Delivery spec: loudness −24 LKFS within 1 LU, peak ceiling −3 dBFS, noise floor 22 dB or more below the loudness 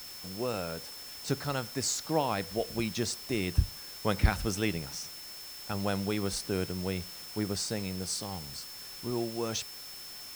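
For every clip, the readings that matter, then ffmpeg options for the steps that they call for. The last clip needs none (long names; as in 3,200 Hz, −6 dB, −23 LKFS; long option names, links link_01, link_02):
interfering tone 5,300 Hz; level of the tone −45 dBFS; background noise floor −45 dBFS; target noise floor −56 dBFS; integrated loudness −33.5 LKFS; sample peak −11.0 dBFS; target loudness −24.0 LKFS
→ -af "bandreject=frequency=5300:width=30"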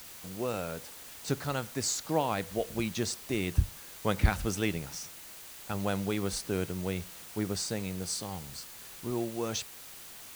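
interfering tone none found; background noise floor −48 dBFS; target noise floor −56 dBFS
→ -af "afftdn=noise_reduction=8:noise_floor=-48"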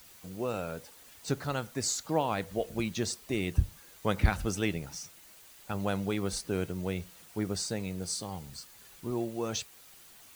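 background noise floor −55 dBFS; target noise floor −56 dBFS
→ -af "afftdn=noise_reduction=6:noise_floor=-55"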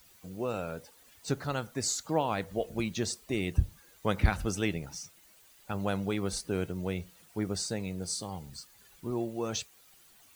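background noise floor −60 dBFS; integrated loudness −33.5 LKFS; sample peak −11.5 dBFS; target loudness −24.0 LKFS
→ -af "volume=9.5dB,alimiter=limit=-3dB:level=0:latency=1"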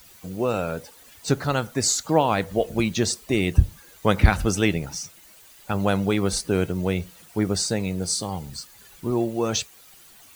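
integrated loudness −24.0 LKFS; sample peak −3.0 dBFS; background noise floor −50 dBFS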